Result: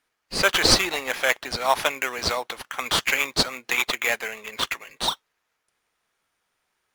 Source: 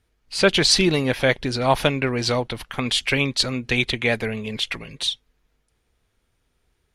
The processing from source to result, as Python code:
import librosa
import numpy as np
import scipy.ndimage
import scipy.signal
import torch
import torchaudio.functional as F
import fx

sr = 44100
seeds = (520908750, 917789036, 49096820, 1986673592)

p1 = scipy.signal.sosfilt(scipy.signal.butter(2, 940.0, 'highpass', fs=sr, output='sos'), x)
p2 = fx.sample_hold(p1, sr, seeds[0], rate_hz=4600.0, jitter_pct=0)
p3 = p1 + F.gain(torch.from_numpy(p2), -3.0).numpy()
y = F.gain(torch.from_numpy(p3), -1.0).numpy()